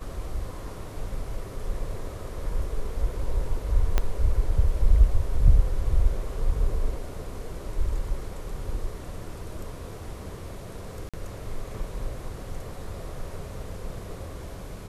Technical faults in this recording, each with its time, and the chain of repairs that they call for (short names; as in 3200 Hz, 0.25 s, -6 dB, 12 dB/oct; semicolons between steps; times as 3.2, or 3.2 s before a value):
3.98 pop -10 dBFS
11.09–11.14 gap 46 ms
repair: de-click; interpolate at 11.09, 46 ms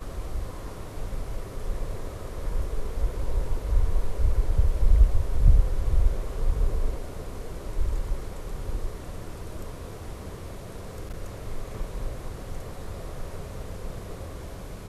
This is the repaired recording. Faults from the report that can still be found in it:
3.98 pop